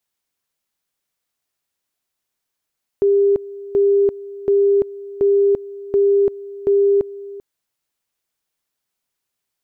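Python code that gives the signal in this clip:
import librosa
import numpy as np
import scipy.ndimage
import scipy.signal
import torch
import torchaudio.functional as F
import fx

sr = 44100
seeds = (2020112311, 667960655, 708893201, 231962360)

y = fx.two_level_tone(sr, hz=400.0, level_db=-11.0, drop_db=18.5, high_s=0.34, low_s=0.39, rounds=6)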